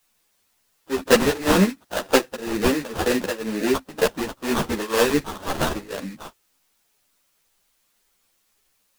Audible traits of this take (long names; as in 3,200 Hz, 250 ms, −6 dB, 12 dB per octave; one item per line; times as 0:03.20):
aliases and images of a low sample rate 2,200 Hz, jitter 20%
tremolo triangle 2 Hz, depth 95%
a quantiser's noise floor 12 bits, dither triangular
a shimmering, thickened sound